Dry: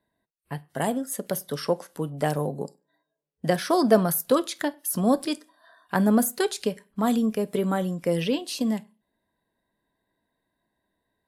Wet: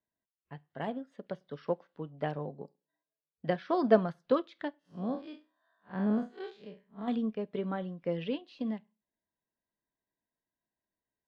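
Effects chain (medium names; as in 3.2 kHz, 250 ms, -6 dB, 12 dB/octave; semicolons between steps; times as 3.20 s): 4.79–7.08 s: spectral blur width 112 ms; low-pass 3.6 kHz 24 dB/octave; upward expansion 1.5:1, over -38 dBFS; trim -4 dB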